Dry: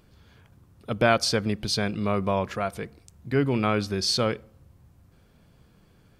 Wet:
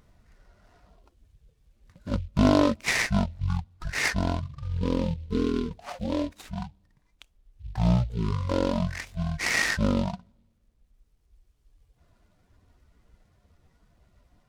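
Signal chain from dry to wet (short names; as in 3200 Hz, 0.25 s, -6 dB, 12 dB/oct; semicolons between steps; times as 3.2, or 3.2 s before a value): reverb removal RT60 1.1 s; speed mistake 78 rpm record played at 33 rpm; noise-modulated delay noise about 3000 Hz, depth 0.045 ms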